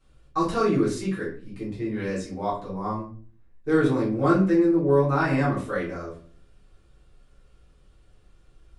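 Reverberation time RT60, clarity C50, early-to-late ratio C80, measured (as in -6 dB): 0.45 s, 6.0 dB, 11.5 dB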